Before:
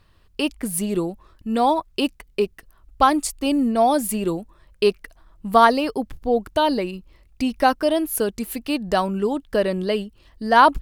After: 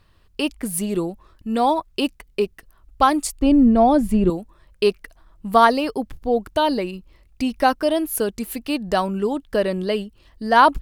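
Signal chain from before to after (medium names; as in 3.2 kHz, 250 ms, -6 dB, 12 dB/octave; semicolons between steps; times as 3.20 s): 3.41–4.30 s: RIAA curve playback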